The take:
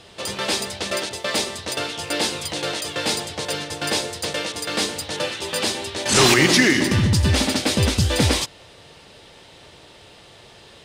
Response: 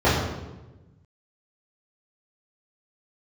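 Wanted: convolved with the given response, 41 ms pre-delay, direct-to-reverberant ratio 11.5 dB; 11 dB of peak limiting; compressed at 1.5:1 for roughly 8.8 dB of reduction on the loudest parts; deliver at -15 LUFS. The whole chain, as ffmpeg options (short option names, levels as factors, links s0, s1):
-filter_complex "[0:a]acompressor=threshold=0.0158:ratio=1.5,alimiter=limit=0.075:level=0:latency=1,asplit=2[s0][s1];[1:a]atrim=start_sample=2205,adelay=41[s2];[s1][s2]afir=irnorm=-1:irlink=0,volume=0.0224[s3];[s0][s3]amix=inputs=2:normalize=0,volume=6.31"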